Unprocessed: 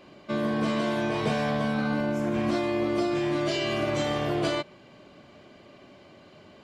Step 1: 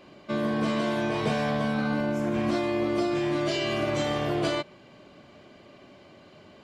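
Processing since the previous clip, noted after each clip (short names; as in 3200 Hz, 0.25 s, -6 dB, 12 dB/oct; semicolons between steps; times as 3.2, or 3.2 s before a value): nothing audible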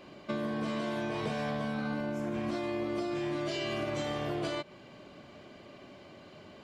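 compressor, threshold -31 dBFS, peak gain reduction 9 dB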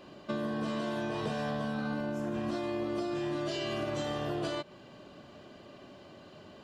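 notch 2200 Hz, Q 5.4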